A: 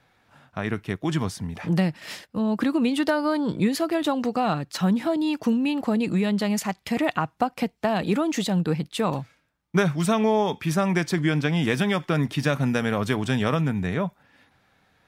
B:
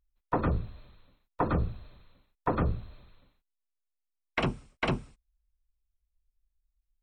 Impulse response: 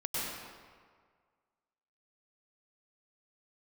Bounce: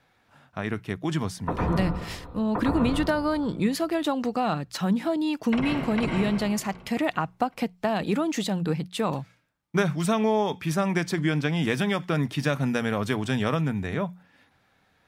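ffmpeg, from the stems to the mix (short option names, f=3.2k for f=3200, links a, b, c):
-filter_complex "[0:a]bandreject=f=60:t=h:w=6,bandreject=f=120:t=h:w=6,bandreject=f=180:t=h:w=6,volume=-2dB,asplit=2[a][b];[1:a]adelay=1150,volume=1.5dB,asplit=3[c][d][e];[c]atrim=end=3.13,asetpts=PTS-STARTPTS,afade=t=out:st=3.126:d=0.004:c=hsin[f];[d]atrim=start=3.13:end=5.25,asetpts=PTS-STARTPTS,volume=0[g];[e]atrim=start=5.25,asetpts=PTS-STARTPTS,afade=t=in:d=0.004:c=hsin[h];[f][g][h]concat=n=3:v=0:a=1,asplit=3[i][j][k];[j]volume=-7.5dB[l];[k]volume=-21.5dB[m];[b]apad=whole_len=360535[n];[i][n]sidechaincompress=threshold=-32dB:ratio=8:attack=16:release=987[o];[2:a]atrim=start_sample=2205[p];[l][p]afir=irnorm=-1:irlink=0[q];[m]aecho=0:1:386|772|1158|1544|1930|2316|2702|3088:1|0.56|0.314|0.176|0.0983|0.0551|0.0308|0.0173[r];[a][o][q][r]amix=inputs=4:normalize=0"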